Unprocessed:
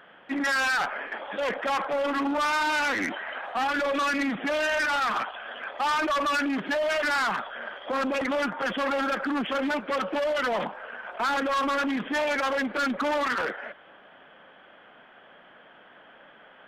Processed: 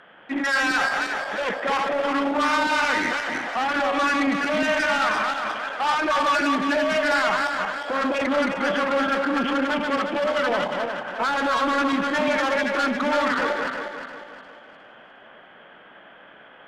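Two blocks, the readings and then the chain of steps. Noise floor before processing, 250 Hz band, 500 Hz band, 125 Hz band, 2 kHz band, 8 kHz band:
−53 dBFS, +4.5 dB, +4.5 dB, +5.0 dB, +4.5 dB, +3.5 dB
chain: feedback delay that plays each chunk backwards 178 ms, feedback 61%, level −3 dB
Bessel low-pass filter 10,000 Hz, order 2
level +2 dB

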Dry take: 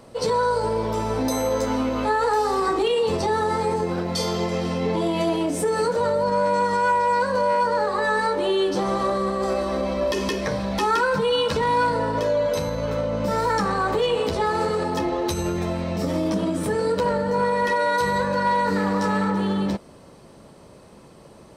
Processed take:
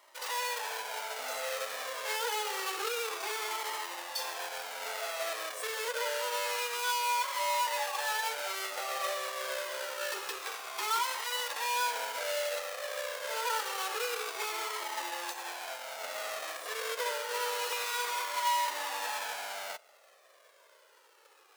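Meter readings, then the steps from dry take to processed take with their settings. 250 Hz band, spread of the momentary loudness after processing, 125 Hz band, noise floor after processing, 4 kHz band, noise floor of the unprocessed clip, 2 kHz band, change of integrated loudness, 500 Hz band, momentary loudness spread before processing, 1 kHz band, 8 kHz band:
−34.5 dB, 7 LU, below −40 dB, −62 dBFS, −3.5 dB, −47 dBFS, −6.5 dB, −11.0 dB, −17.0 dB, 4 LU, −11.0 dB, 0.0 dB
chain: each half-wave held at its own peak
Bessel high-pass filter 780 Hz, order 6
flanger whose copies keep moving one way falling 0.27 Hz
level −7.5 dB

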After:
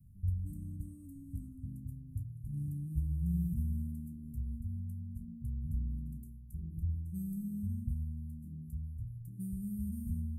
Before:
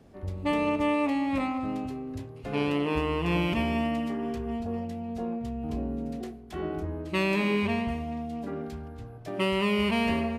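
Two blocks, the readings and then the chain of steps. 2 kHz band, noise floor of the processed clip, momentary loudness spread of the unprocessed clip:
below −40 dB, −50 dBFS, 12 LU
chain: inverse Chebyshev band-stop filter 460–4,200 Hz, stop band 60 dB
level +2 dB

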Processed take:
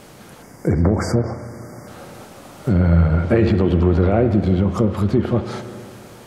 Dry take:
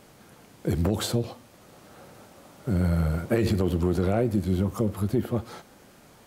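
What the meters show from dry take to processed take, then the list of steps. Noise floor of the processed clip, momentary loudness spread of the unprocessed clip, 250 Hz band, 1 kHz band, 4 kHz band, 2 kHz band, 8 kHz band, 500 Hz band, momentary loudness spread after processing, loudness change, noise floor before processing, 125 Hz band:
−43 dBFS, 10 LU, +8.0 dB, +9.0 dB, +0.5 dB, +8.0 dB, can't be measured, +8.0 dB, 19 LU, +8.5 dB, −54 dBFS, +9.0 dB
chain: in parallel at −1 dB: brickwall limiter −21 dBFS, peak gain reduction 8.5 dB
on the sum: time-frequency box erased 0:00.42–0:01.88, 2,300–4,600 Hz
spring reverb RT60 2.5 s, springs 35/58 ms, chirp 50 ms, DRR 9 dB
treble cut that deepens with the level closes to 2,700 Hz, closed at −16 dBFS
level +4.5 dB

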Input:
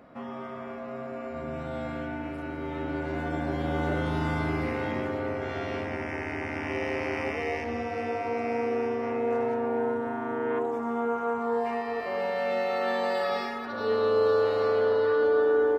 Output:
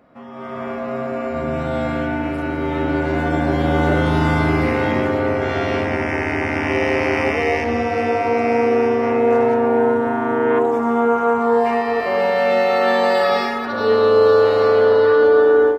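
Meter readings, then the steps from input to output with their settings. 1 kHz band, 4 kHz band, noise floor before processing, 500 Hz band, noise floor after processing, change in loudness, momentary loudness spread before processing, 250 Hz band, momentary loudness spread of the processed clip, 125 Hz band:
+11.5 dB, +11.5 dB, −38 dBFS, +11.0 dB, −26 dBFS, +11.5 dB, 12 LU, +12.0 dB, 10 LU, +12.0 dB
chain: automatic gain control gain up to 14 dB
level −1.5 dB

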